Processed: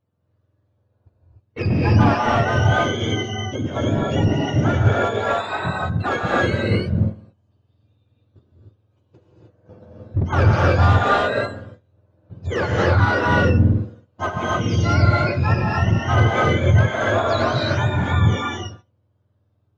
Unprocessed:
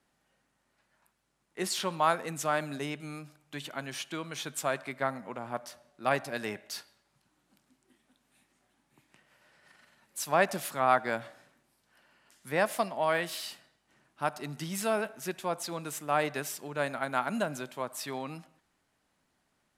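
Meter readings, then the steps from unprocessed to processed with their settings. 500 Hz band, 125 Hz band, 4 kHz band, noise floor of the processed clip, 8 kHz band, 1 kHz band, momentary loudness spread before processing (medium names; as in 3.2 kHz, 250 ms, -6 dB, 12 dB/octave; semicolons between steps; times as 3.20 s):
+11.0 dB, +27.0 dB, +10.5 dB, -67 dBFS, no reading, +10.0 dB, 14 LU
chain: spectrum inverted on a logarithmic axis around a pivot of 960 Hz; gate -57 dBFS, range -18 dB; in parallel at +2 dB: compression, threshold -38 dBFS, peak gain reduction 17.5 dB; on the sum: hard clipper -24 dBFS, distortion -10 dB; tape spacing loss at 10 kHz 21 dB; gated-style reverb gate 330 ms rising, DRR -4 dB; trim +8.5 dB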